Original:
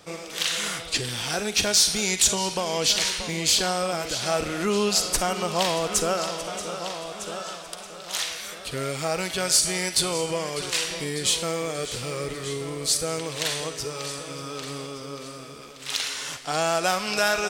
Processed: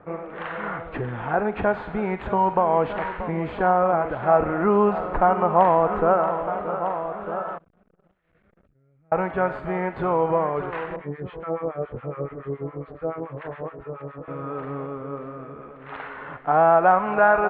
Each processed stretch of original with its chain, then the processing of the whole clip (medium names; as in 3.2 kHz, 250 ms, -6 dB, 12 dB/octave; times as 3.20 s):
7.58–9.12 s: amplifier tone stack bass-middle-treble 10-0-1 + compressor with a negative ratio -59 dBFS + transformer saturation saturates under 980 Hz
10.96–14.28 s: distance through air 180 m + doubling 22 ms -10.5 dB + harmonic tremolo 7.1 Hz, depth 100%, crossover 950 Hz
whole clip: dynamic bell 870 Hz, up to +8 dB, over -42 dBFS, Q 1.7; inverse Chebyshev low-pass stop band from 5.2 kHz, stop band 60 dB; trim +4 dB